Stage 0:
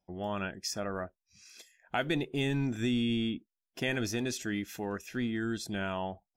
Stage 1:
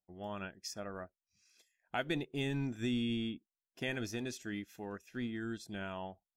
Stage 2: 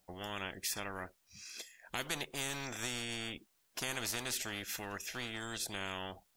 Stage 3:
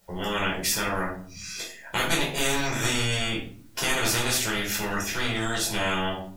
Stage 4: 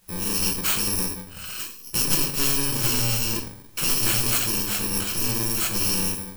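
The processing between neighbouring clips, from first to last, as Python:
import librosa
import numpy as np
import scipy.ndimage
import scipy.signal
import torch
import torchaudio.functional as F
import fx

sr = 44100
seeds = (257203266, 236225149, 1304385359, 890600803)

y1 = fx.upward_expand(x, sr, threshold_db=-49.0, expansion=1.5)
y1 = y1 * 10.0 ** (-4.0 / 20.0)
y2 = fx.spectral_comp(y1, sr, ratio=4.0)
y2 = y2 * 10.0 ** (-1.0 / 20.0)
y3 = fx.room_shoebox(y2, sr, seeds[0], volume_m3=540.0, walls='furnished', distance_m=4.7)
y3 = y3 * 10.0 ** (6.5 / 20.0)
y4 = fx.bit_reversed(y3, sr, seeds[1], block=64)
y4 = y4 * 10.0 ** (3.0 / 20.0)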